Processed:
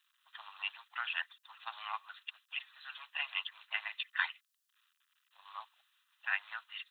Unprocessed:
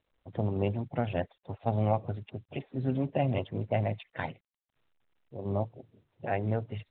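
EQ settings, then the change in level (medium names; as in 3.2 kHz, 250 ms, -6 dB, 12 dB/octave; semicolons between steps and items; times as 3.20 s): steep high-pass 1.1 kHz 48 dB/octave; treble shelf 2.4 kHz +8.5 dB; band-stop 2.2 kHz, Q 5.9; +5.5 dB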